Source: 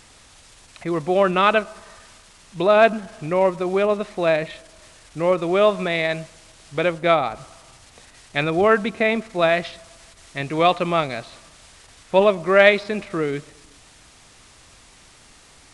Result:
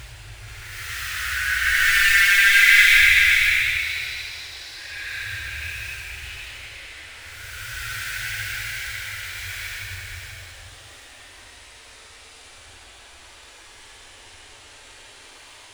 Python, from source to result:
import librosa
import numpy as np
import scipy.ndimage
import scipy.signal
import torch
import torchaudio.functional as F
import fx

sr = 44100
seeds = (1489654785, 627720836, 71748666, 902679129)

p1 = fx.cycle_switch(x, sr, every=3, mode='inverted')
p2 = scipy.signal.sosfilt(scipy.signal.cheby1(5, 1.0, [110.0, 1500.0], 'bandstop', fs=sr, output='sos'), p1)
p3 = fx.peak_eq(p2, sr, hz=150.0, db=-12.5, octaves=0.7)
p4 = fx.dmg_noise_band(p3, sr, seeds[0], low_hz=270.0, high_hz=4000.0, level_db=-51.0)
p5 = fx.paulstretch(p4, sr, seeds[1], factor=10.0, window_s=0.1, from_s=12.39)
p6 = p5 + fx.echo_single(p5, sr, ms=483, db=-6.0, dry=0)
y = F.gain(torch.from_numpy(p6), 1.5).numpy()